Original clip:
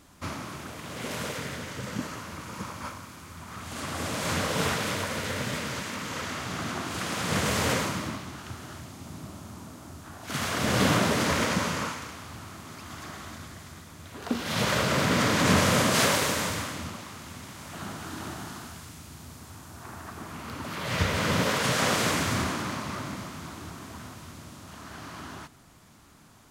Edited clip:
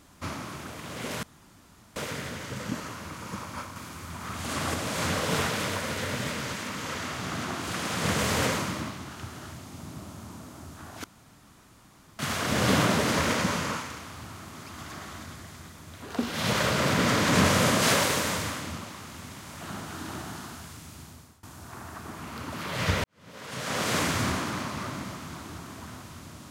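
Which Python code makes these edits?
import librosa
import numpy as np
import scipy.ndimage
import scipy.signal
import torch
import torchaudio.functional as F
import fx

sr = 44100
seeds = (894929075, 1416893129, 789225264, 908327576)

y = fx.edit(x, sr, fx.insert_room_tone(at_s=1.23, length_s=0.73),
    fx.clip_gain(start_s=3.03, length_s=0.98, db=4.0),
    fx.insert_room_tone(at_s=10.31, length_s=1.15),
    fx.fade_out_to(start_s=19.13, length_s=0.42, floor_db=-23.0),
    fx.fade_in_span(start_s=21.16, length_s=0.95, curve='qua'), tone=tone)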